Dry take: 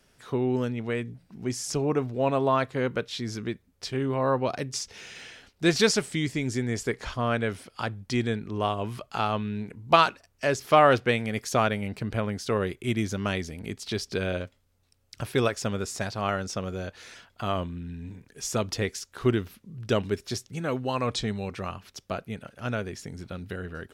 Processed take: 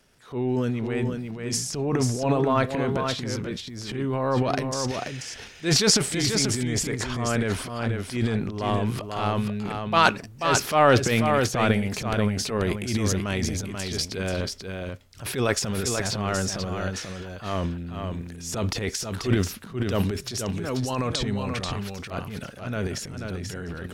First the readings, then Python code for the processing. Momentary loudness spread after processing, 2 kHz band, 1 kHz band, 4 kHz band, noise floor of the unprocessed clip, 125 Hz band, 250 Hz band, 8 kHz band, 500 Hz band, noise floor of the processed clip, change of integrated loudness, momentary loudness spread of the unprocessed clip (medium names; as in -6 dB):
13 LU, +2.0 dB, +1.0 dB, +5.0 dB, -67 dBFS, +4.5 dB, +3.0 dB, +8.0 dB, +0.5 dB, -42 dBFS, +2.5 dB, 14 LU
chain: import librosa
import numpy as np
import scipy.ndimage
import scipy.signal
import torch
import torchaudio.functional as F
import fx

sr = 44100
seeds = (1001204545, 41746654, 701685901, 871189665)

p1 = fx.transient(x, sr, attack_db=-9, sustain_db=11)
p2 = p1 + fx.echo_single(p1, sr, ms=486, db=-5.5, dry=0)
y = F.gain(torch.from_numpy(p2), 1.0).numpy()